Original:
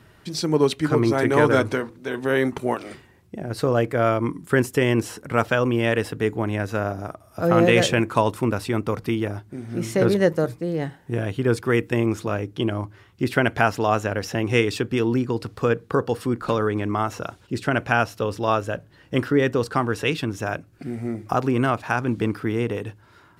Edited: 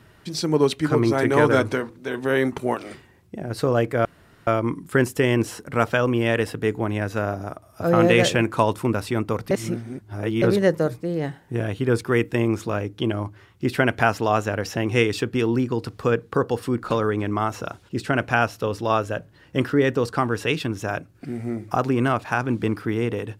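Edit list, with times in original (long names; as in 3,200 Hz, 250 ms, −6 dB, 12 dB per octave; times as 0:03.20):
0:04.05: splice in room tone 0.42 s
0:09.09–0:10.00: reverse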